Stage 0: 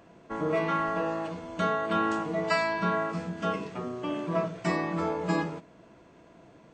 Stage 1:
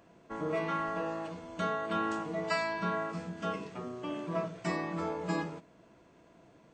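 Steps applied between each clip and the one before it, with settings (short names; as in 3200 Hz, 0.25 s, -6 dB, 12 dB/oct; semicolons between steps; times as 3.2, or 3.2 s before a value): high shelf 5600 Hz +4 dB; gain -5.5 dB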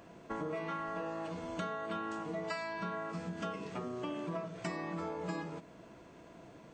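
compressor 6:1, threshold -42 dBFS, peak gain reduction 14.5 dB; gain +5.5 dB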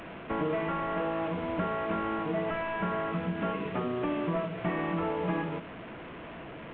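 delta modulation 16 kbps, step -46 dBFS; gain +8.5 dB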